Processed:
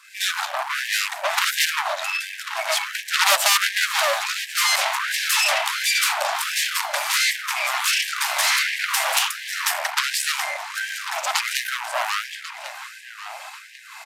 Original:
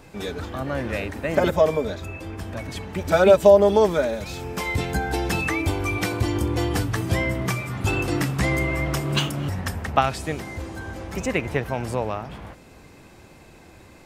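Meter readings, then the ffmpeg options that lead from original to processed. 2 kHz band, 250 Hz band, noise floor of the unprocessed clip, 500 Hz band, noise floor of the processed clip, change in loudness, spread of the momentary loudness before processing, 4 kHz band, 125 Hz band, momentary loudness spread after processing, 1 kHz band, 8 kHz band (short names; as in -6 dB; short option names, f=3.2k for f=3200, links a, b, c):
+8.0 dB, under -40 dB, -48 dBFS, -12.0 dB, -41 dBFS, +2.0 dB, 15 LU, +12.5 dB, under -40 dB, 14 LU, +3.0 dB, +14.0 dB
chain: -filter_complex "[0:a]equalizer=f=340:t=o:w=1.7:g=-2.5,acrossover=split=720|2600[a][b][c];[a]acrusher=bits=5:mode=log:mix=0:aa=0.000001[d];[d][b][c]amix=inputs=3:normalize=0,acrossover=split=590[e][f];[e]aeval=exprs='val(0)*(1-0.7/2+0.7/2*cos(2*PI*1.6*n/s))':c=same[g];[f]aeval=exprs='val(0)*(1-0.7/2-0.7/2*cos(2*PI*1.6*n/s))':c=same[h];[g][h]amix=inputs=2:normalize=0,aeval=exprs='0.2*(cos(1*acos(clip(val(0)/0.2,-1,1)))-cos(1*PI/2))+0.0794*(cos(6*acos(clip(val(0)/0.2,-1,1)))-cos(6*PI/2))':c=same,aeval=exprs='clip(val(0),-1,0.0447)':c=same,asplit=2[i][j];[j]adelay=1092,lowpass=f=4.5k:p=1,volume=-11.5dB,asplit=2[k][l];[l]adelay=1092,lowpass=f=4.5k:p=1,volume=0.46,asplit=2[m][n];[n]adelay=1092,lowpass=f=4.5k:p=1,volume=0.46,asplit=2[o][p];[p]adelay=1092,lowpass=f=4.5k:p=1,volume=0.46,asplit=2[q][r];[r]adelay=1092,lowpass=f=4.5k:p=1,volume=0.46[s];[k][m][o][q][s]amix=inputs=5:normalize=0[t];[i][t]amix=inputs=2:normalize=0,aresample=32000,aresample=44100,alimiter=level_in=17dB:limit=-1dB:release=50:level=0:latency=1,afftfilt=real='re*gte(b*sr/1024,550*pow(1600/550,0.5+0.5*sin(2*PI*1.4*pts/sr)))':imag='im*gte(b*sr/1024,550*pow(1600/550,0.5+0.5*sin(2*PI*1.4*pts/sr)))':win_size=1024:overlap=0.75,volume=-2dB"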